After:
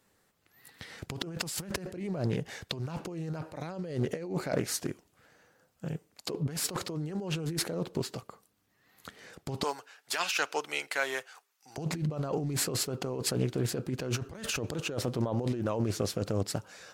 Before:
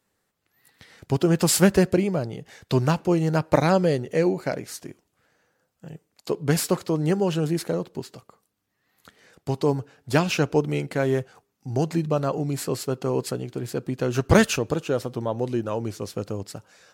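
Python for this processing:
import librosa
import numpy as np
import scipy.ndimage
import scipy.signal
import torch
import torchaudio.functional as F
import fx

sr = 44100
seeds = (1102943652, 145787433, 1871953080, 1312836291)

y = fx.highpass(x, sr, hz=1200.0, slope=12, at=(9.63, 11.78))
y = fx.over_compress(y, sr, threshold_db=-31.0, ratio=-1.0)
y = fx.doppler_dist(y, sr, depth_ms=0.31)
y = y * 10.0 ** (-2.5 / 20.0)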